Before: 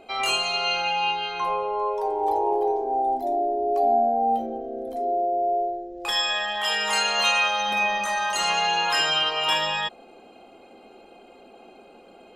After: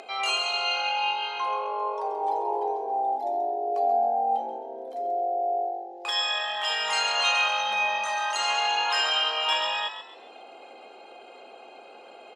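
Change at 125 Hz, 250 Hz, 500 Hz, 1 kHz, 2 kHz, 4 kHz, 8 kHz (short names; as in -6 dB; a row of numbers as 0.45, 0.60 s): under -20 dB, -11.5 dB, -4.5 dB, -2.5 dB, -2.5 dB, -1.5 dB, -4.5 dB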